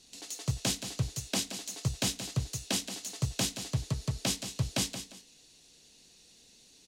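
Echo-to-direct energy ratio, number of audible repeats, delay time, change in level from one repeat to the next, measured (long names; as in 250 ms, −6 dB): −9.5 dB, 2, 176 ms, −11.0 dB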